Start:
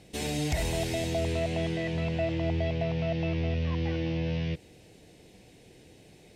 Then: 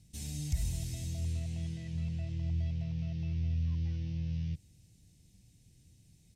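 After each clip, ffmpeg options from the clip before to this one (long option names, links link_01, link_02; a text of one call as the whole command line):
ffmpeg -i in.wav -af "firequalizer=gain_entry='entry(100,0);entry(420,-27);entry(1000,-23);entry(6000,-4)':delay=0.05:min_phase=1,volume=-1dB" out.wav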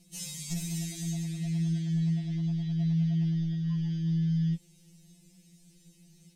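ffmpeg -i in.wav -af "asoftclip=type=tanh:threshold=-24dB,afftfilt=real='re*2.83*eq(mod(b,8),0)':imag='im*2.83*eq(mod(b,8),0)':win_size=2048:overlap=0.75,volume=9dB" out.wav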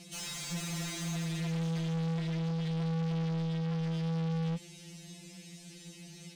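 ffmpeg -i in.wav -filter_complex "[0:a]highshelf=frequency=11000:gain=-6,asplit=2[link_01][link_02];[link_02]highpass=frequency=720:poles=1,volume=32dB,asoftclip=type=tanh:threshold=-21dB[link_03];[link_01][link_03]amix=inputs=2:normalize=0,lowpass=frequency=2600:poles=1,volume=-6dB,volume=-6dB" out.wav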